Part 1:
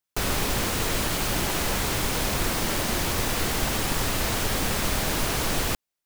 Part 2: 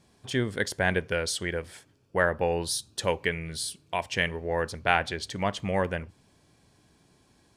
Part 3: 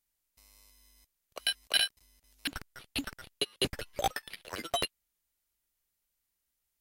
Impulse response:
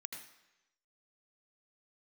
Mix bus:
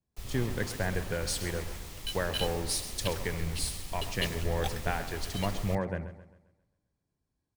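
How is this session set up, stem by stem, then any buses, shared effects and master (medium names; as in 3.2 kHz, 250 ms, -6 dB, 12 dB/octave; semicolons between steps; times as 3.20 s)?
-15.5 dB, 0.00 s, no send, no echo send, band-stop 1.5 kHz, Q 9.1
-3.5 dB, 0.00 s, no send, echo send -10.5 dB, peaking EQ 3 kHz -6 dB 0.67 oct; compression, threshold -27 dBFS, peak gain reduction 9 dB; bass shelf 240 Hz +5 dB
-8.5 dB, 0.60 s, no send, no echo send, peaking EQ 3 kHz +7 dB; rotary cabinet horn 0.7 Hz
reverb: none
echo: feedback delay 133 ms, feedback 60%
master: bass shelf 70 Hz +9 dB; three bands expanded up and down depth 70%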